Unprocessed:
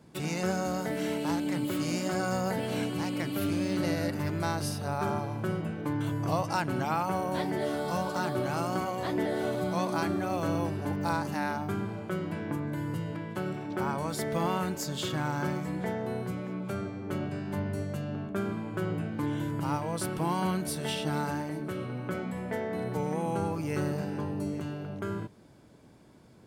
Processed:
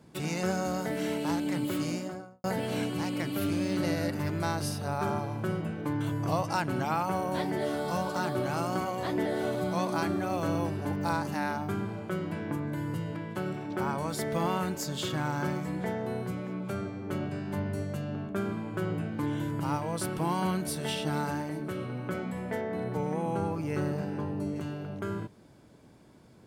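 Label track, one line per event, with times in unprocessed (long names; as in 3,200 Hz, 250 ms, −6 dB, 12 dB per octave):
1.740000	2.440000	fade out and dull
22.610000	24.560000	high-shelf EQ 3,600 Hz −6.5 dB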